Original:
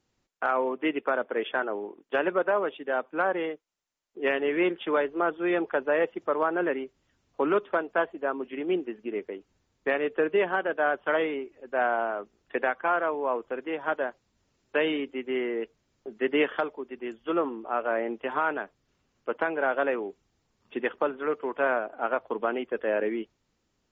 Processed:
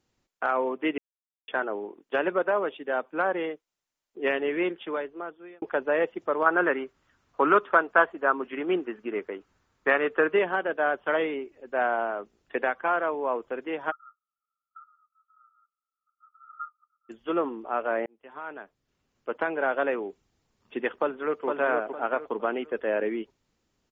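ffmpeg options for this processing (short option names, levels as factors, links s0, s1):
-filter_complex "[0:a]asettb=1/sr,asplit=3[s0][s1][s2];[s0]atrim=end=6.464[s3];[s1]atrim=start=6.46:end=10.39,asetpts=PTS-STARTPTS,afade=t=in:d=0.004:c=qsin,afade=t=out:st=3.926:d=0.004:c=qsin,equalizer=f=1300:t=o:w=1.2:g=10.5[s4];[s2]atrim=start=10.386[s5];[s3][s4]acrossfade=d=0.004:c1=hsin:c2=qsin[s6];[s6][s5]acrossfade=d=0.004:c1=qsin:c2=hsin,asplit=3[s7][s8][s9];[s7]afade=t=out:st=13.9:d=0.02[s10];[s8]asuperpass=centerf=1300:order=20:qfactor=7.2,afade=t=in:st=13.9:d=0.02,afade=t=out:st=17.09:d=0.02[s11];[s9]afade=t=in:st=17.09:d=0.02[s12];[s10][s11][s12]amix=inputs=3:normalize=0,asplit=2[s13][s14];[s14]afade=t=in:st=21.01:d=0.01,afade=t=out:st=21.46:d=0.01,aecho=0:1:460|920|1380|1840:0.630957|0.189287|0.0567862|0.0170358[s15];[s13][s15]amix=inputs=2:normalize=0,asplit=5[s16][s17][s18][s19][s20];[s16]atrim=end=0.98,asetpts=PTS-STARTPTS,afade=t=out:st=0.976:d=0.004:c=hsin[s21];[s17]atrim=start=0.98:end=1.48,asetpts=PTS-STARTPTS,volume=0[s22];[s18]atrim=start=1.48:end=5.62,asetpts=PTS-STARTPTS,afade=t=in:d=0.004:c=hsin,afade=t=out:st=2.86:d=1.28[s23];[s19]atrim=start=5.62:end=18.06,asetpts=PTS-STARTPTS,afade=t=in:d=0.004:c=hsin,afade=t=out:st=12.436:d=0.004:c=hsin[s24];[s20]atrim=start=18.06,asetpts=PTS-STARTPTS,afade=t=in:d=1.46[s25];[s21][s22][s23][s24][s25]concat=n=5:v=0:a=1"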